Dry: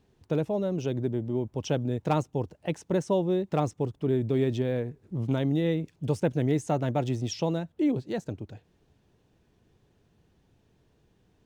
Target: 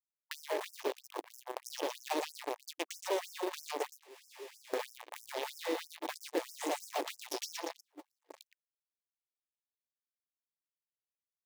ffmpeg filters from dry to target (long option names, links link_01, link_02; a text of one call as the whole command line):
ffmpeg -i in.wav -filter_complex "[0:a]aeval=exprs='val(0)+0.00794*sin(2*PI*880*n/s)':channel_layout=same,aecho=1:1:118|236|354|472|590|708|826|944:0.708|0.389|0.214|0.118|0.0648|0.0356|0.0196|0.0108,asettb=1/sr,asplit=3[link_01][link_02][link_03];[link_01]atrim=end=0.914[link_04];[link_02]atrim=start=0.91:end=1.63,asetpts=PTS-STARTPTS,afade=type=in:duration=0.004:curve=qsin,afade=type=out:start_time=0.716:duration=0.004:curve=qsin,acompressor=threshold=-34dB:ratio=1.5[link_05];[link_03]atrim=start=1.626[link_06];[link_04][link_05]acrossfade=duration=0.004:curve1=hsin:curve2=qsin[link_07];[link_07][link_06]acrossfade=duration=0.004:curve1=qsin:curve2=hsin,asplit=3[link_08][link_09][link_10];[link_08]afade=type=out:start_time=4.02:duration=0.02[link_11];[link_09]volume=27.5dB,asoftclip=hard,volume=-27.5dB,afade=type=in:start_time=4.02:duration=0.02,afade=type=out:start_time=4.73:duration=0.02[link_12];[link_10]afade=type=in:start_time=4.73:duration=0.02[link_13];[link_11][link_12][link_13]amix=inputs=3:normalize=0,acrusher=bits=3:mix=0:aa=0.5,equalizer=frequency=1400:width=4.2:gain=-12,acrusher=bits=4:mode=log:mix=0:aa=0.000001,acrossover=split=150[link_14][link_15];[link_15]acompressor=threshold=-44dB:ratio=3[link_16];[link_14][link_16]amix=inputs=2:normalize=0,asplit=3[link_17][link_18][link_19];[link_17]afade=type=out:start_time=7.79:duration=0.02[link_20];[link_18]agate=range=-36dB:threshold=-29dB:ratio=16:detection=peak,afade=type=in:start_time=7.79:duration=0.02,afade=type=out:start_time=8.3:duration=0.02[link_21];[link_19]afade=type=in:start_time=8.3:duration=0.02[link_22];[link_20][link_21][link_22]amix=inputs=3:normalize=0,afftfilt=real='re*gte(b*sr/1024,270*pow(5200/270,0.5+0.5*sin(2*PI*3.1*pts/sr)))':imag='im*gte(b*sr/1024,270*pow(5200/270,0.5+0.5*sin(2*PI*3.1*pts/sr)))':win_size=1024:overlap=0.75,volume=9dB" out.wav